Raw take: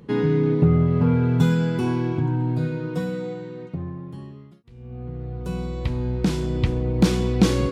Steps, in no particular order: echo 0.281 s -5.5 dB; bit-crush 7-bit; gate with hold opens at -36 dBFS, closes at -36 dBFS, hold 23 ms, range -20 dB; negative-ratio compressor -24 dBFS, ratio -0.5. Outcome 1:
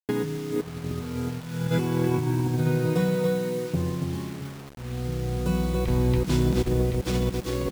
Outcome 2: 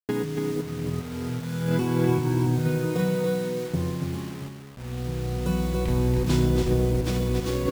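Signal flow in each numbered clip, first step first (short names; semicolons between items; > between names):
gate with hold > echo > negative-ratio compressor > bit-crush; gate with hold > negative-ratio compressor > bit-crush > echo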